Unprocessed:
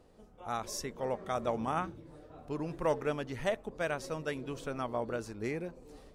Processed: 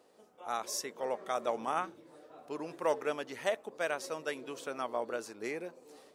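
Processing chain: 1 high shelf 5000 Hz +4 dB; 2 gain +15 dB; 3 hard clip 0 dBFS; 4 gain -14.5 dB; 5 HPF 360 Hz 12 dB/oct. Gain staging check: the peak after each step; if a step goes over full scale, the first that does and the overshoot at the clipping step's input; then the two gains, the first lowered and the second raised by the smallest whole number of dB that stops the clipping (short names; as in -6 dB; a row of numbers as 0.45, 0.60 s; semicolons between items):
-20.0, -5.0, -5.0, -19.5, -16.0 dBFS; no overload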